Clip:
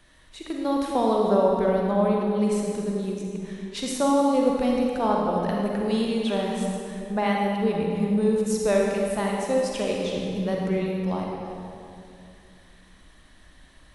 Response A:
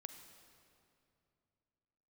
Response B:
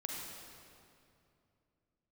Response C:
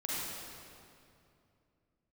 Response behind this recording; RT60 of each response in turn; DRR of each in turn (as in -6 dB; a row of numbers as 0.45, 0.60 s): B; 2.7, 2.6, 2.6 s; 7.5, -1.5, -7.5 dB